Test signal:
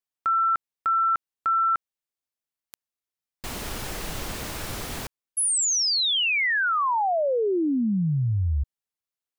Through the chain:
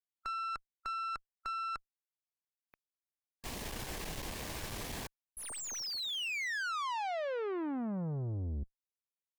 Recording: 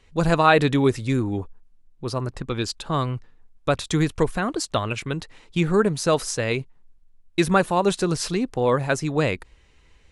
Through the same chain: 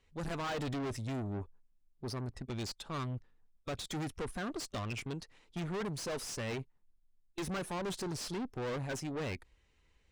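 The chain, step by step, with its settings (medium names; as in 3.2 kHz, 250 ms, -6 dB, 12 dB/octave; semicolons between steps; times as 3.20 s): spectral noise reduction 7 dB; valve stage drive 31 dB, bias 0.55; slew-rate limiter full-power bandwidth 97 Hz; trim -4 dB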